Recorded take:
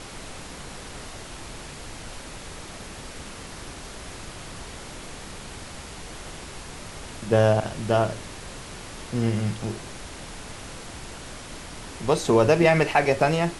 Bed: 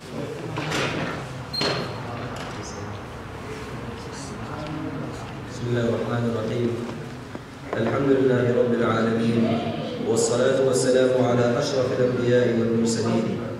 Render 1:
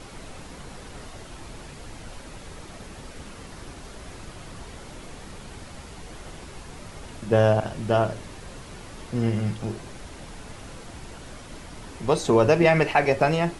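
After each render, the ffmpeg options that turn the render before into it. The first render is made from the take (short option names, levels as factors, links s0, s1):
-af "afftdn=nr=6:nf=-40"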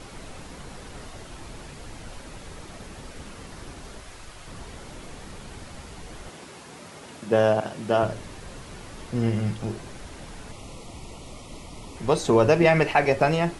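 -filter_complex "[0:a]asettb=1/sr,asplit=3[s0][s1][s2];[s0]atrim=end=4.004[s3];[s1]atrim=start=4:end=4.48,asetpts=PTS-STARTPTS,afade=t=in:d=0.004:c=qsin,afade=t=out:st=0.476:d=0.004:c=qsin,equalizer=f=180:w=0.39:g=-8.5[s4];[s2]atrim=start=4.476[s5];[s3][s4]acrossfade=d=0.004:c1=hsin:c2=qsin[s6];[s6][s5]acrossfade=d=0.004:c1=qsin:c2=hsin,asettb=1/sr,asplit=3[s7][s8][s9];[s7]atrim=end=6.294[s10];[s8]atrim=start=6.29:end=8.03,asetpts=PTS-STARTPTS,afade=t=in:d=0.004:c=qsin,afade=t=out:st=1.736:d=0.004:c=qsin,highpass=170[s11];[s9]atrim=start=8.026[s12];[s10][s11]acrossfade=d=0.004:c1=hsin:c2=qsin[s13];[s13][s12]acrossfade=d=0.004:c1=qsin:c2=hsin,asettb=1/sr,asplit=3[s14][s15][s16];[s14]atrim=end=10.514[s17];[s15]atrim=start=10.51:end=11.97,asetpts=PTS-STARTPTS,afade=t=in:d=0.004:c=qsin,afade=t=out:st=1.456:d=0.004:c=qsin,asuperstop=centerf=1600:order=4:qfactor=2.2[s18];[s16]atrim=start=11.966[s19];[s17][s18]acrossfade=d=0.004:c1=hsin:c2=qsin[s20];[s20][s19]acrossfade=d=0.004:c1=qsin:c2=hsin"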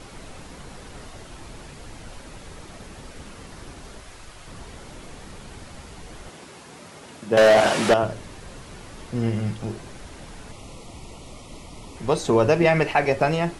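-filter_complex "[0:a]asettb=1/sr,asplit=3[s0][s1][s2];[s0]atrim=end=7.374[s3];[s1]atrim=start=7.37:end=7.94,asetpts=PTS-STARTPTS,afade=t=in:d=0.004:c=qsin,afade=t=out:st=0.566:d=0.004:c=qsin,asplit=2[s4][s5];[s5]highpass=f=720:p=1,volume=22.4,asoftclip=type=tanh:threshold=0.447[s6];[s4][s6]amix=inputs=2:normalize=0,lowpass=f=6900:p=1,volume=0.501[s7];[s2]atrim=start=7.936[s8];[s3][s7]acrossfade=d=0.004:c1=hsin:c2=qsin[s9];[s9][s8]acrossfade=d=0.004:c1=qsin:c2=hsin"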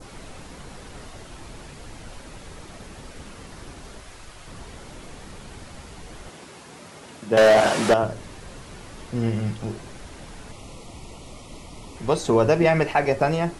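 -af "adynamicequalizer=threshold=0.0126:dfrequency=2800:dqfactor=1.1:tfrequency=2800:tqfactor=1.1:attack=5:release=100:ratio=0.375:range=2:mode=cutabove:tftype=bell"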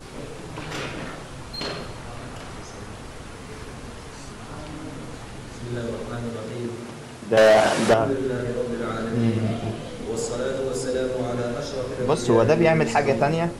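-filter_complex "[1:a]volume=0.473[s0];[0:a][s0]amix=inputs=2:normalize=0"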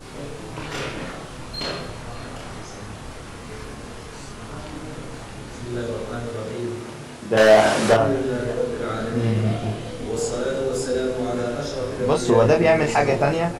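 -filter_complex "[0:a]asplit=2[s0][s1];[s1]adelay=28,volume=0.708[s2];[s0][s2]amix=inputs=2:normalize=0,aecho=1:1:581:0.0891"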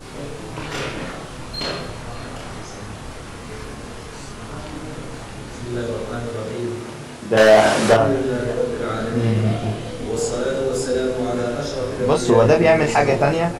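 -af "volume=1.33,alimiter=limit=0.708:level=0:latency=1"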